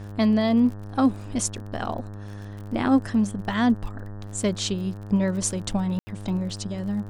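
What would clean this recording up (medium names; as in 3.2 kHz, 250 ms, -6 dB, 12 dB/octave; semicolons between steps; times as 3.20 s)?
de-click; de-hum 102 Hz, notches 18; room tone fill 5.99–6.07 s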